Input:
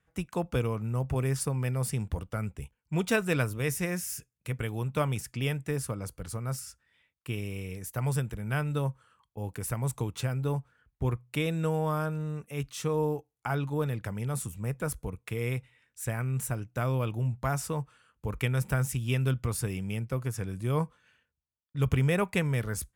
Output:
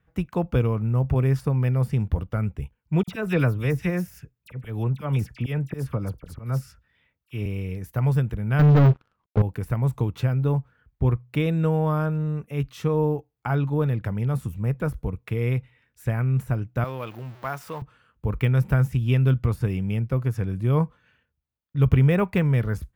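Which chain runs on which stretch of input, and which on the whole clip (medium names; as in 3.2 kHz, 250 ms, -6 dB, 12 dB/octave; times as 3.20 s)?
3.03–7.46 s: slow attack 120 ms + phase dispersion lows, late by 47 ms, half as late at 2.3 kHz
8.59–9.42 s: CVSD coder 32 kbps + low-pass 1.1 kHz 6 dB/octave + waveshaping leveller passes 5
16.84–17.82 s: jump at every zero crossing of -39.5 dBFS + high-pass 900 Hz 6 dB/octave
whole clip: bass shelf 290 Hz +6 dB; de-esser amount 70%; peaking EQ 8.4 kHz -14 dB 1.4 oct; trim +3.5 dB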